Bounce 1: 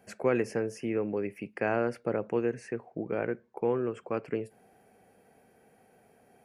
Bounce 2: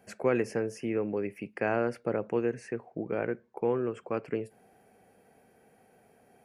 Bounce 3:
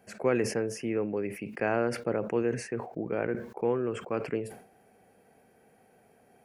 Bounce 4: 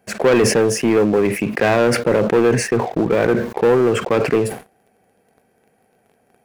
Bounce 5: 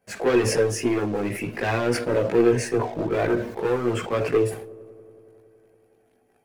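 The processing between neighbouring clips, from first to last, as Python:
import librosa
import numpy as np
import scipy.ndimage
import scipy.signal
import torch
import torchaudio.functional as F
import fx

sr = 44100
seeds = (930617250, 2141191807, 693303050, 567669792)

y1 = x
y2 = fx.sustainer(y1, sr, db_per_s=100.0)
y3 = fx.leveller(y2, sr, passes=3)
y3 = y3 * librosa.db_to_amplitude(7.0)
y4 = fx.chorus_voices(y3, sr, voices=4, hz=0.43, base_ms=18, depth_ms=1.9, mix_pct=60)
y4 = fx.echo_wet_lowpass(y4, sr, ms=93, feedback_pct=83, hz=710.0, wet_db=-22.0)
y4 = fx.rev_double_slope(y4, sr, seeds[0], early_s=0.33, late_s=2.4, knee_db=-28, drr_db=13.5)
y4 = y4 * librosa.db_to_amplitude(-4.5)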